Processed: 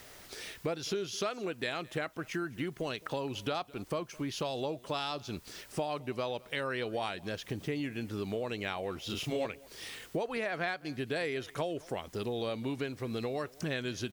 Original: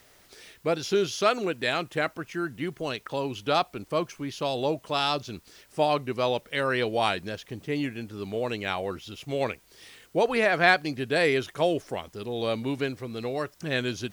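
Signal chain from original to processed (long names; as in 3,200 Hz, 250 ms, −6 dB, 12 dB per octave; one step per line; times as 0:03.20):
downward compressor 6 to 1, threshold −38 dBFS, peak gain reduction 21.5 dB
0:09.06–0:09.46: double-tracking delay 33 ms −3 dB
single-tap delay 214 ms −23 dB
level +5 dB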